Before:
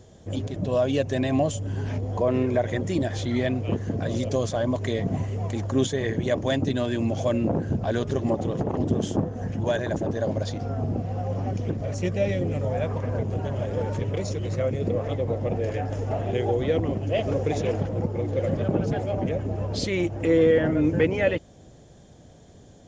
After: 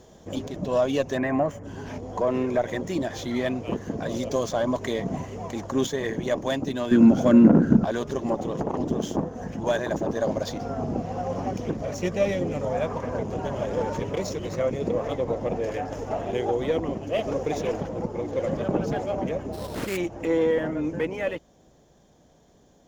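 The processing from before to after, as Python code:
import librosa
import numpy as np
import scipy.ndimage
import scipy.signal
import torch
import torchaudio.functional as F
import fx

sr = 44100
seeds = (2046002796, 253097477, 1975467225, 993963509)

y = scipy.signal.medfilt(x, 5)
y = fx.graphic_eq_15(y, sr, hz=(100, 1000, 6300), db=(-12, 5, 6))
y = fx.rider(y, sr, range_db=5, speed_s=2.0)
y = fx.high_shelf_res(y, sr, hz=2600.0, db=-10.5, q=3.0, at=(1.16, 1.63), fade=0.02)
y = fx.small_body(y, sr, hz=(220.0, 1400.0), ring_ms=20, db=16, at=(6.91, 7.85))
y = fx.sample_hold(y, sr, seeds[0], rate_hz=4700.0, jitter_pct=20, at=(19.52, 19.96), fade=0.02)
y = fx.cheby_harmonics(y, sr, harmonics=(8,), levels_db=(-32,), full_scale_db=-2.5)
y = y * 10.0 ** (-1.5 / 20.0)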